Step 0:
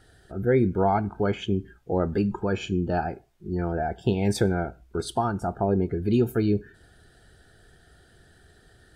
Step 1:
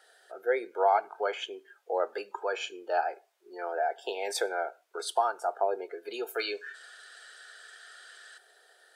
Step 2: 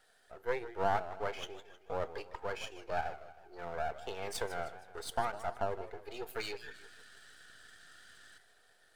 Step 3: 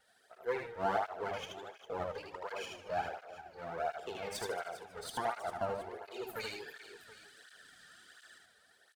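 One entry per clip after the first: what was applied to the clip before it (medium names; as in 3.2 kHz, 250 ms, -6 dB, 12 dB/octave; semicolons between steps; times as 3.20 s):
steep high-pass 480 Hz 36 dB/octave; time-frequency box 6.39–8.38 s, 1–9.1 kHz +11 dB
partial rectifier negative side -12 dB; modulated delay 157 ms, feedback 48%, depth 187 cents, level -14 dB; trim -4 dB
on a send: multi-tap echo 77/404/723 ms -3.5/-14/-17.5 dB; on the sum: cancelling through-zero flanger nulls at 1.4 Hz, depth 3.1 ms; trim +1 dB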